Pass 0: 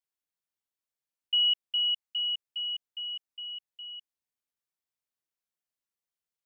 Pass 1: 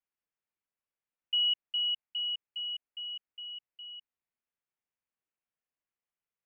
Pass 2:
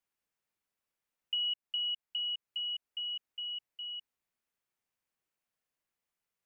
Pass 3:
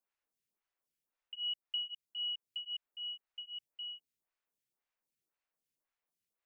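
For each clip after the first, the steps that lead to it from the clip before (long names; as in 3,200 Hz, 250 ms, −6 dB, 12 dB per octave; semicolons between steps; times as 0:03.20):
Butterworth low-pass 2,900 Hz 48 dB per octave
downward compressor 2.5 to 1, threshold −41 dBFS, peak gain reduction 10 dB; level +4.5 dB
phaser with staggered stages 1.9 Hz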